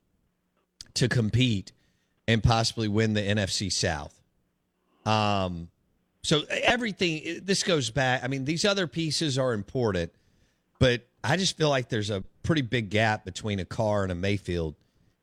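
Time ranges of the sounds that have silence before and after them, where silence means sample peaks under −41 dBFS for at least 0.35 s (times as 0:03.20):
0:00.81–0:01.69
0:02.28–0:04.08
0:05.06–0:05.66
0:06.24–0:10.08
0:10.81–0:14.72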